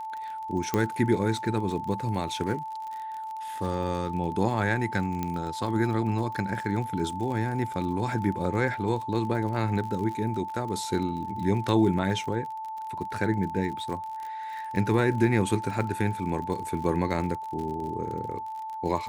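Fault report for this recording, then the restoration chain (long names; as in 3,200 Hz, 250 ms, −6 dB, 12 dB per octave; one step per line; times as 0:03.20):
surface crackle 43 per second −34 dBFS
whistle 880 Hz −33 dBFS
0:00.74: click −12 dBFS
0:05.23: click −16 dBFS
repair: click removal
notch filter 880 Hz, Q 30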